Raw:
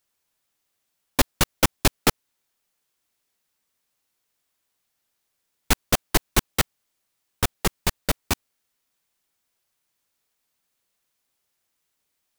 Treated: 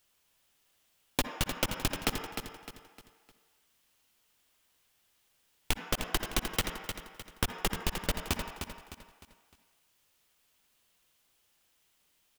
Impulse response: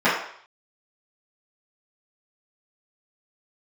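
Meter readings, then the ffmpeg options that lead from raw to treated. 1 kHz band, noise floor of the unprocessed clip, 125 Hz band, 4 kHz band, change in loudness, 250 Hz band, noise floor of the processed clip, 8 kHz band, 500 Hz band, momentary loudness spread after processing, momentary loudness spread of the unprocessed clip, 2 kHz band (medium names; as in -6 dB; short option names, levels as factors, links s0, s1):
-9.0 dB, -77 dBFS, -9.0 dB, -7.0 dB, -10.0 dB, -9.0 dB, -72 dBFS, -10.5 dB, -9.0 dB, 17 LU, 7 LU, -8.0 dB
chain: -filter_complex "[0:a]lowshelf=f=73:g=6.5,alimiter=limit=0.335:level=0:latency=1:release=245,asplit=2[s0][s1];[1:a]atrim=start_sample=2205,adelay=50[s2];[s1][s2]afir=irnorm=-1:irlink=0,volume=0.0376[s3];[s0][s3]amix=inputs=2:normalize=0,acompressor=threshold=0.0251:ratio=5,equalizer=f=3000:w=3:g=5.5,asplit=2[s4][s5];[s5]aecho=0:1:305|610|915|1220:0.398|0.151|0.0575|0.0218[s6];[s4][s6]amix=inputs=2:normalize=0,volume=1.5"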